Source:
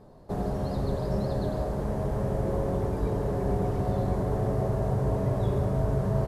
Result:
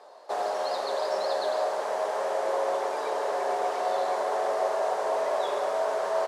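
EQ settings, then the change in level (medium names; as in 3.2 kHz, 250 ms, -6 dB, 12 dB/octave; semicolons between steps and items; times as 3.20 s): high-pass 580 Hz 24 dB/octave; distance through air 83 m; treble shelf 3.5 kHz +10 dB; +9.0 dB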